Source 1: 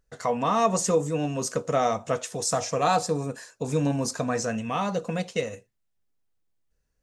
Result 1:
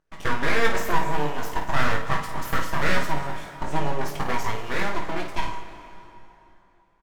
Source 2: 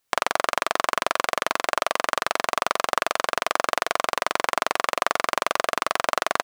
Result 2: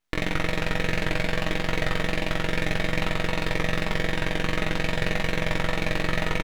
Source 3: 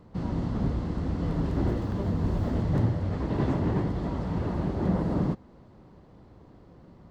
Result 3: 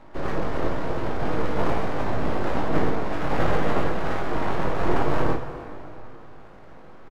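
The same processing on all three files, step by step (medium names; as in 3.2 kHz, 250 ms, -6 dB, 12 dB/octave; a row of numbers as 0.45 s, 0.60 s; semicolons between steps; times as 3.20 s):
comb 6.3 ms, depth 40%; overdrive pedal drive 17 dB, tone 1 kHz, clips at 0 dBFS; full-wave rectifier; early reflections 20 ms -5.5 dB, 54 ms -7 dB; plate-style reverb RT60 3.3 s, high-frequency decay 0.75×, DRR 8 dB; normalise loudness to -27 LUFS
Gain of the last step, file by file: -4.0 dB, -5.5 dB, +1.5 dB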